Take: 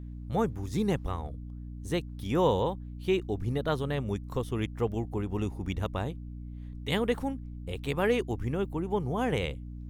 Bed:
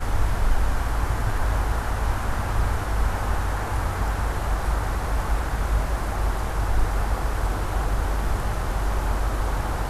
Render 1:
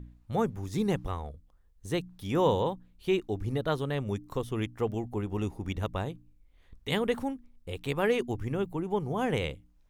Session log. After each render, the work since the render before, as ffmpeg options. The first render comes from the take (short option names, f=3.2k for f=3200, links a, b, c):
-af "bandreject=f=60:t=h:w=4,bandreject=f=120:t=h:w=4,bandreject=f=180:t=h:w=4,bandreject=f=240:t=h:w=4,bandreject=f=300:t=h:w=4"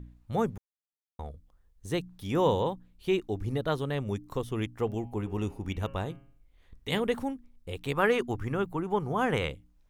-filter_complex "[0:a]asettb=1/sr,asplit=3[a][b][c];[a]atrim=end=4.854[d];[b]atrim=start=4.85:end=7,asetpts=PTS-STARTPTS,afade=t=in:d=0.004:c=qsin,afade=t=out:st=2.146:d=0.004:c=qsin,bandreject=f=136.4:t=h:w=4,bandreject=f=272.8:t=h:w=4,bandreject=f=409.2:t=h:w=4,bandreject=f=545.6:t=h:w=4,bandreject=f=682:t=h:w=4,bandreject=f=818.4:t=h:w=4,bandreject=f=954.8:t=h:w=4,bandreject=f=1.0912k:t=h:w=4,bandreject=f=1.2276k:t=h:w=4,bandreject=f=1.364k:t=h:w=4,bandreject=f=1.5004k:t=h:w=4,bandreject=f=1.6368k:t=h:w=4,bandreject=f=1.7732k:t=h:w=4,bandreject=f=1.9096k:t=h:w=4,bandreject=f=2.046k:t=h:w=4,bandreject=f=2.1824k:t=h:w=4,bandreject=f=2.3188k:t=h:w=4,bandreject=f=2.4552k:t=h:w=4,bandreject=f=2.5916k:t=h:w=4,bandreject=f=2.728k:t=h:w=4,bandreject=f=2.8644k:t=h:w=4,bandreject=f=3.0008k:t=h:w=4,bandreject=f=3.1372k:t=h:w=4[e];[c]atrim=start=6.996[f];[d][e]acrossfade=d=0.004:c1=hsin:c2=qsin[g];[g][f]acrossfade=d=0.004:c1=qsin:c2=hsin,asettb=1/sr,asplit=3[h][i][j];[h]atrim=end=7.954[k];[i]atrim=start=7.95:end=9.49,asetpts=PTS-STARTPTS,afade=t=in:d=0.004:c=qsin,afade=t=out:st=1.536:d=0.004:c=qsin,equalizer=f=1.3k:t=o:w=1:g=8.5[l];[j]atrim=start=9.486[m];[k][l]acrossfade=d=0.004:c1=hsin:c2=qsin[n];[n][m]acrossfade=d=0.004:c1=qsin:c2=hsin,asplit=3[o][p][q];[o]atrim=end=0.58,asetpts=PTS-STARTPTS,afade=t=out:st=0.576:d=0.004:c=hsin[r];[p]atrim=start=0.58:end=1.19,asetpts=PTS-STARTPTS,volume=0[s];[q]atrim=start=1.19,asetpts=PTS-STARTPTS,afade=t=in:d=0.004:c=hsin[t];[r][s][t]concat=n=3:v=0:a=1"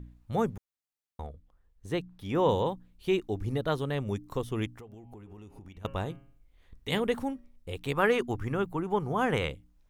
-filter_complex "[0:a]asettb=1/sr,asplit=3[a][b][c];[a]atrim=end=1.264[d];[b]atrim=start=1.26:end=2.49,asetpts=PTS-STARTPTS,afade=t=in:d=0.004:c=qsin,afade=t=out:st=1.226:d=0.004:c=qsin,bass=f=250:g=-2,treble=f=4k:g=-8[e];[c]atrim=start=2.486[f];[d][e]acrossfade=d=0.004:c1=hsin:c2=qsin[g];[g][f]acrossfade=d=0.004:c1=qsin:c2=hsin,asettb=1/sr,asplit=3[h][i][j];[h]atrim=end=4.734[k];[i]atrim=start=4.73:end=5.85,asetpts=PTS-STARTPTS,afade=t=in:d=0.004:c=qsin,afade=t=out:st=1.116:d=0.004:c=qsin,acompressor=threshold=-44dB:ratio=10:attack=3.2:release=140:knee=1:detection=peak[l];[j]atrim=start=5.846[m];[k][l]acrossfade=d=0.004:c1=hsin:c2=qsin[n];[n][m]acrossfade=d=0.004:c1=qsin:c2=hsin,asettb=1/sr,asplit=3[o][p][q];[o]atrim=end=7.174[r];[p]atrim=start=7.17:end=7.73,asetpts=PTS-STARTPTS,afade=t=in:d=0.004:c=qsin,afade=t=out:st=0.556:d=0.004:c=qsin,bandreject=f=190.1:t=h:w=4,bandreject=f=380.2:t=h:w=4,bandreject=f=570.3:t=h:w=4,bandreject=f=760.4:t=h:w=4,bandreject=f=950.5:t=h:w=4,bandreject=f=1.1406k:t=h:w=4,bandreject=f=1.3307k:t=h:w=4,bandreject=f=1.5208k:t=h:w=4,bandreject=f=1.7109k:t=h:w=4,bandreject=f=1.901k:t=h:w=4,bandreject=f=2.0911k:t=h:w=4,bandreject=f=2.2812k:t=h:w=4,bandreject=f=2.4713k:t=h:w=4,bandreject=f=2.6614k:t=h:w=4,bandreject=f=2.8515k:t=h:w=4,bandreject=f=3.0416k:t=h:w=4,bandreject=f=3.2317k:t=h:w=4,bandreject=f=3.4218k:t=h:w=4,bandreject=f=3.6119k:t=h:w=4,bandreject=f=3.802k:t=h:w=4,bandreject=f=3.9921k:t=h:w=4,bandreject=f=4.1822k:t=h:w=4,bandreject=f=4.3723k:t=h:w=4,bandreject=f=4.5624k:t=h:w=4,bandreject=f=4.7525k:t=h:w=4,bandreject=f=4.9426k:t=h:w=4,bandreject=f=5.1327k:t=h:w=4,bandreject=f=5.3228k:t=h:w=4,bandreject=f=5.5129k:t=h:w=4,bandreject=f=5.703k:t=h:w=4[s];[q]atrim=start=7.726[t];[r][s]acrossfade=d=0.004:c1=hsin:c2=qsin[u];[u][t]acrossfade=d=0.004:c1=qsin:c2=hsin"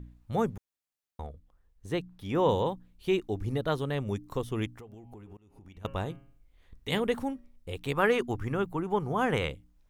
-filter_complex "[0:a]asplit=2[a][b];[a]atrim=end=5.37,asetpts=PTS-STARTPTS,afade=t=out:st=5.366:d=0.004:c=hsin:silence=0.0668344[c];[b]atrim=start=5.37,asetpts=PTS-STARTPTS,afade=t=in:d=0.61:c=qsin:silence=0.0668344[d];[c][d]concat=n=2:v=0:a=1"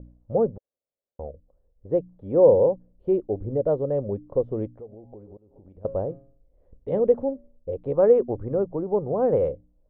-af "lowpass=f=550:t=q:w=5.3"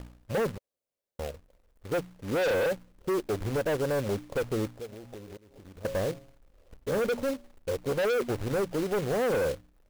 -af "asoftclip=type=tanh:threshold=-22dB,acrusher=bits=2:mode=log:mix=0:aa=0.000001"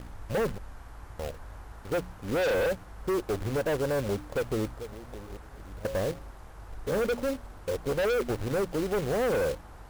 -filter_complex "[1:a]volume=-21.5dB[a];[0:a][a]amix=inputs=2:normalize=0"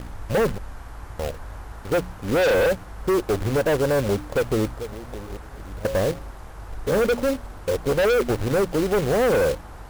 -af "volume=7.5dB"